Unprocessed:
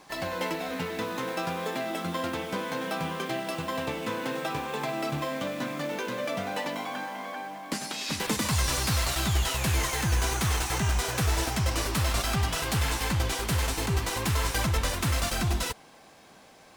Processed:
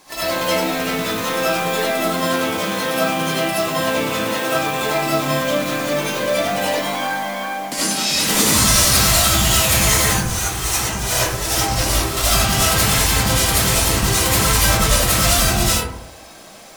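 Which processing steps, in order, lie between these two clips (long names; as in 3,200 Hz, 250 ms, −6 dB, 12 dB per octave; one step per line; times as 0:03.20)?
high-shelf EQ 3,800 Hz +11 dB
0:10.12–0:12.17: compressor whose output falls as the input rises −28 dBFS, ratio −0.5
convolution reverb RT60 0.80 s, pre-delay 35 ms, DRR −10 dB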